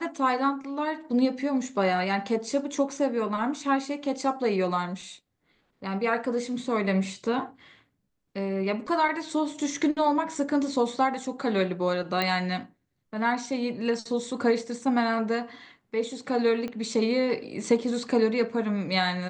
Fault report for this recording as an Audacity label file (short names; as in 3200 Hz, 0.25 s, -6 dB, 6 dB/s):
12.220000	12.220000	pop -13 dBFS
16.680000	16.680000	pop -22 dBFS